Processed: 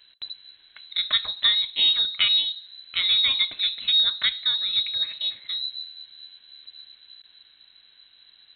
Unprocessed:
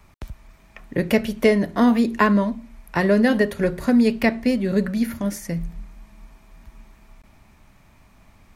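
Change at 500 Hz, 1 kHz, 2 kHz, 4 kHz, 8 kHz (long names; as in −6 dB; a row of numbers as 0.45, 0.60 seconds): below −30 dB, −17.5 dB, −5.0 dB, +20.0 dB, below −40 dB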